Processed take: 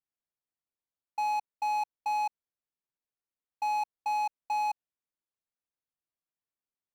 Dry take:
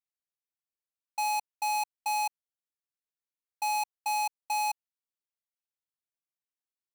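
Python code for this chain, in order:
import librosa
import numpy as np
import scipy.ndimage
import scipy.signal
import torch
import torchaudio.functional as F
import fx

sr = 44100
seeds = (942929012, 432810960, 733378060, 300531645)

y = fx.lowpass(x, sr, hz=1100.0, slope=6)
y = y * librosa.db_to_amplitude(2.5)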